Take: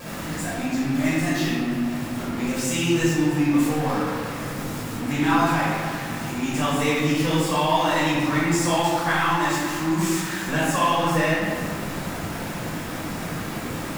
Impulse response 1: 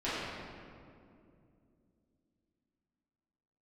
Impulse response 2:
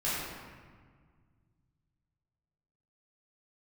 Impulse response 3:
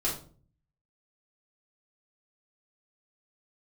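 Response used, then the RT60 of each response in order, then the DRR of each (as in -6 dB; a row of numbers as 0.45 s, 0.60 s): 2; 2.5 s, 1.7 s, 0.45 s; -13.5 dB, -10.5 dB, -7.5 dB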